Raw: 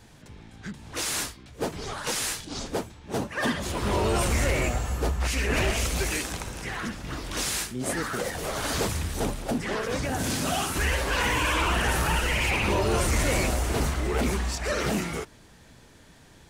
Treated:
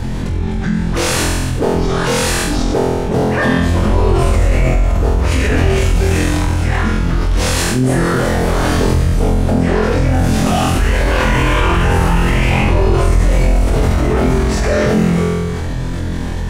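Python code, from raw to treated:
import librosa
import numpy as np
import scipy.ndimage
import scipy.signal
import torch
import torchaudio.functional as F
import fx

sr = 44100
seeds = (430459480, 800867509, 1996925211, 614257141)

y = fx.tilt_eq(x, sr, slope=-2.5)
y = fx.room_flutter(y, sr, wall_m=4.0, rt60_s=0.84)
y = fx.env_flatten(y, sr, amount_pct=70)
y = y * 10.0 ** (-3.0 / 20.0)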